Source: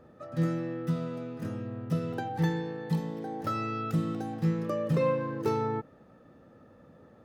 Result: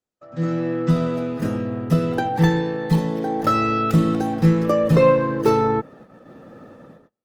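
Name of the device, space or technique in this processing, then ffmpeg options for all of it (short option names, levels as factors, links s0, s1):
video call: -af "highpass=130,dynaudnorm=f=210:g=5:m=5.96,agate=range=0.02:threshold=0.00794:ratio=16:detection=peak,volume=0.841" -ar 48000 -c:a libopus -b:a 20k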